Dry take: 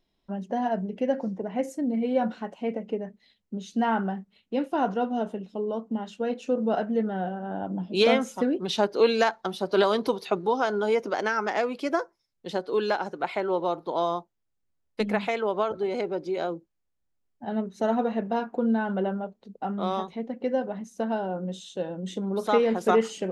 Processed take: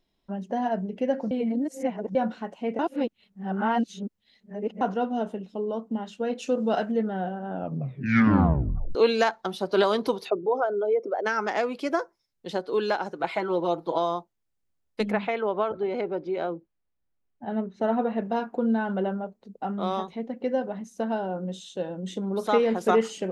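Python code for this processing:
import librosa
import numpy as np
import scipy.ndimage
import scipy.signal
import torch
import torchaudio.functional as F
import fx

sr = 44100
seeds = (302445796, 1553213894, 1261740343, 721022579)

y = fx.high_shelf(x, sr, hz=2300.0, db=9.5, at=(6.38, 6.92))
y = fx.envelope_sharpen(y, sr, power=2.0, at=(10.28, 11.25), fade=0.02)
y = fx.comb(y, sr, ms=6.1, depth=0.65, at=(13.19, 13.98))
y = fx.lowpass(y, sr, hz=3000.0, slope=12, at=(15.11, 18.18))
y = fx.peak_eq(y, sr, hz=3400.0, db=-5.0, octaves=0.77, at=(19.16, 19.56))
y = fx.edit(y, sr, fx.reverse_span(start_s=1.31, length_s=0.84),
    fx.reverse_span(start_s=2.79, length_s=2.02),
    fx.tape_stop(start_s=7.5, length_s=1.45), tone=tone)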